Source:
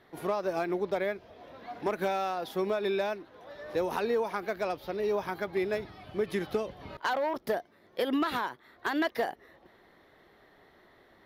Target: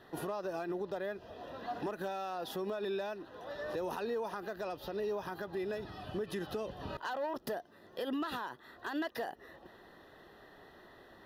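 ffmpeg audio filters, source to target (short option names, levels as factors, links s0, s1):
-filter_complex "[0:a]asplit=2[s0][s1];[s1]acompressor=threshold=0.0141:ratio=6,volume=1.41[s2];[s0][s2]amix=inputs=2:normalize=0,alimiter=level_in=1.06:limit=0.0631:level=0:latency=1:release=112,volume=0.944,asuperstop=centerf=2200:order=8:qfactor=5.7,volume=0.596"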